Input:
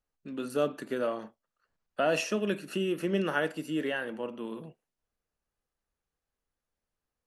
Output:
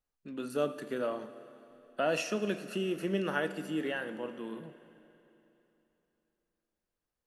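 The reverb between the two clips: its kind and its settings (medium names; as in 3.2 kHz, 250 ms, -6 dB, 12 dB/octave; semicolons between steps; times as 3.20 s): Schroeder reverb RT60 3.2 s, combs from 32 ms, DRR 12.5 dB; trim -3 dB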